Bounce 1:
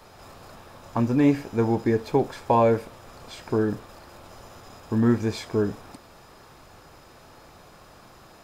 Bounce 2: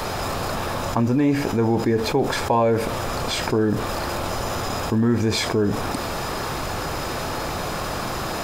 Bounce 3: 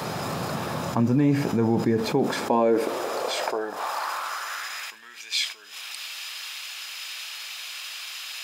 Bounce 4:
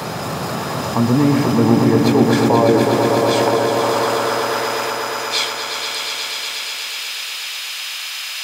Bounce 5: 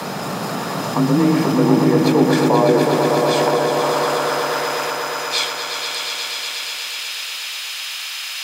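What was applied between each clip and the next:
level flattener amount 70%; trim -1.5 dB
high-pass sweep 150 Hz -> 2.8 kHz, 1.97–5.17 s; trim -4.5 dB
echo with a slow build-up 120 ms, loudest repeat 5, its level -7.5 dB; trim +5.5 dB
frequency shift +30 Hz; trim -1 dB

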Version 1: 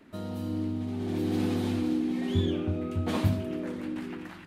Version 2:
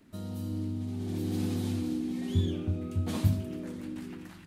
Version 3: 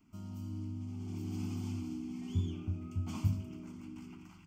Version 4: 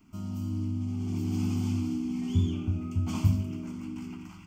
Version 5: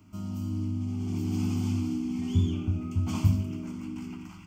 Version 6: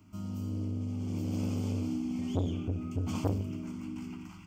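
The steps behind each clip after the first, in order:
tone controls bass +9 dB, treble +11 dB; trim -8 dB
static phaser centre 2.6 kHz, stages 8; trim -5 dB
reverberation RT60 0.60 s, pre-delay 14 ms, DRR 8.5 dB; trim +7.5 dB
pre-echo 168 ms -22 dB; trim +1 dB
transformer saturation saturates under 440 Hz; trim -2.5 dB

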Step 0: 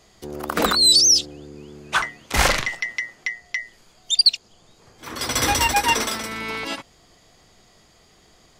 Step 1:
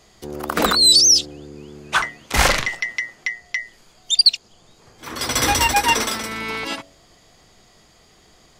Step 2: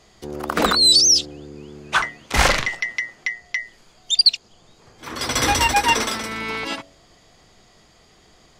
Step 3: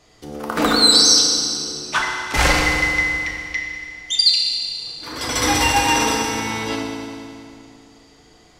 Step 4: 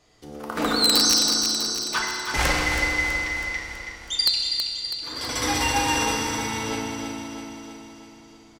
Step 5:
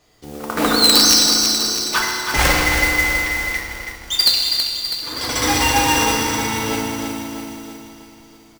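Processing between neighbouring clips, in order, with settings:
de-hum 94.14 Hz, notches 7; trim +2 dB
treble shelf 11 kHz -10 dB
FDN reverb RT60 2.5 s, low-frequency decay 1.2×, high-frequency decay 0.9×, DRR -2 dB; trim -2.5 dB
integer overflow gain 3 dB; on a send: feedback delay 325 ms, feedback 58%, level -7 dB; on the sum: trim -6.5 dB
in parallel at -5 dB: hysteresis with a dead band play -33.5 dBFS; on the sum: modulation noise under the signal 12 dB; trim +2.5 dB

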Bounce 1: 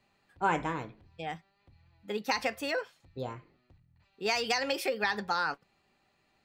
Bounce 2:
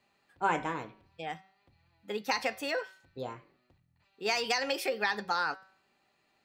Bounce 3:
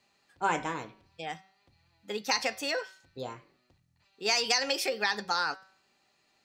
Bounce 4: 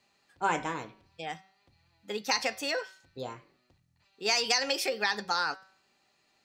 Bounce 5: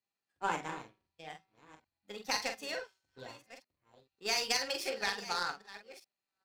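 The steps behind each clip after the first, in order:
bass shelf 120 Hz -12 dB; de-hum 190.1 Hz, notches 32
peaking EQ 5.9 kHz +9 dB 1.3 oct
no audible change
chunks repeated in reverse 600 ms, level -10.5 dB; doubling 45 ms -5 dB; power-law waveshaper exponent 1.4; trim -2.5 dB

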